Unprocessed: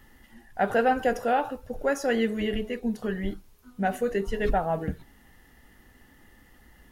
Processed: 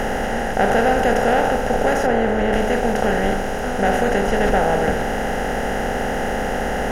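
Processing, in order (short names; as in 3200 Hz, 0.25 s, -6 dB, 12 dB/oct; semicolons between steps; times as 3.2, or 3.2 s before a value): per-bin compression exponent 0.2; 2.05–2.52 high shelf 2600 Hz -> 4300 Hz -11 dB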